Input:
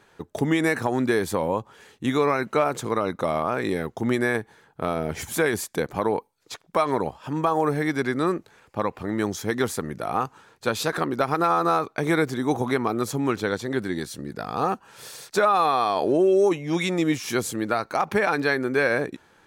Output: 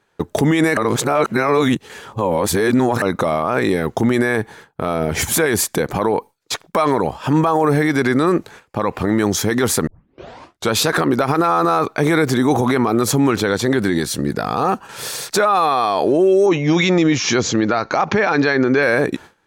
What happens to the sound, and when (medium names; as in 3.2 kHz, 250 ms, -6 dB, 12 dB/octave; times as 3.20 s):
0.77–3.02 s: reverse
9.87 s: tape start 0.85 s
16.46–18.83 s: steep low-pass 6.9 kHz 96 dB/octave
whole clip: gate with hold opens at -42 dBFS; loudness maximiser +20 dB; trim -6 dB